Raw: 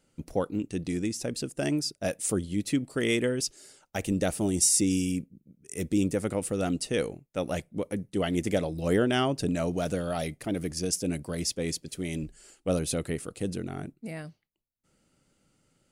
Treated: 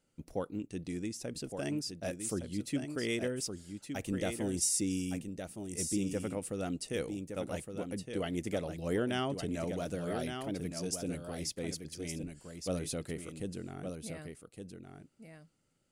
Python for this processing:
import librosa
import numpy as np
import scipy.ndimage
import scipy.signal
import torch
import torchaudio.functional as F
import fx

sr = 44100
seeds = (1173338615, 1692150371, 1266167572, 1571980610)

y = x + 10.0 ** (-7.0 / 20.0) * np.pad(x, (int(1165 * sr / 1000.0), 0))[:len(x)]
y = y * librosa.db_to_amplitude(-8.0)